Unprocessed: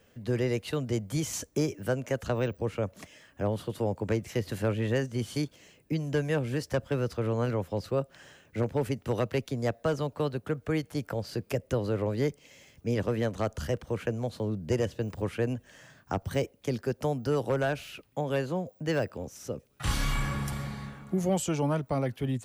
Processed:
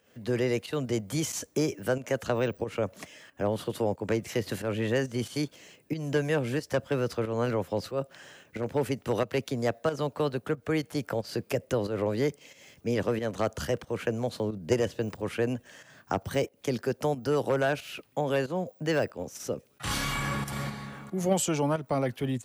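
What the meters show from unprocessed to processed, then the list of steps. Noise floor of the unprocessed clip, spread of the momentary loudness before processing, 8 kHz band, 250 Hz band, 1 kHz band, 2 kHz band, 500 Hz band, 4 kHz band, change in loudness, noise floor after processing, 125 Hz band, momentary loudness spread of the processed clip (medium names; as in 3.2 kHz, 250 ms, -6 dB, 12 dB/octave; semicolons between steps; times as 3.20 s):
-63 dBFS, 7 LU, +3.0 dB, +0.5 dB, +2.5 dB, +3.0 dB, +2.0 dB, +3.0 dB, +1.0 dB, -63 dBFS, -2.5 dB, 8 LU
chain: in parallel at +1 dB: level held to a coarse grid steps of 12 dB; on the sum: high-pass 200 Hz 6 dB/octave; volume shaper 91 bpm, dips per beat 1, -10 dB, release 202 ms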